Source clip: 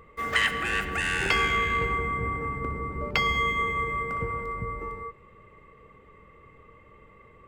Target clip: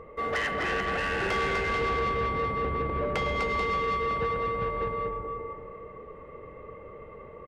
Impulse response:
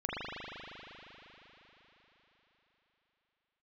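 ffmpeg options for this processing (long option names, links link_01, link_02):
-filter_complex "[0:a]asplit=2[link_01][link_02];[link_02]acompressor=threshold=-37dB:ratio=6,volume=-2dB[link_03];[link_01][link_03]amix=inputs=2:normalize=0,lowpass=frequency=1900:poles=1,equalizer=frequency=570:width=1:gain=10.5,asplit=2[link_04][link_05];[link_05]aecho=0:1:250|437.5|578.1|683.6|762.7:0.631|0.398|0.251|0.158|0.1[link_06];[link_04][link_06]amix=inputs=2:normalize=0,asoftclip=type=tanh:threshold=-20dB,volume=-3dB"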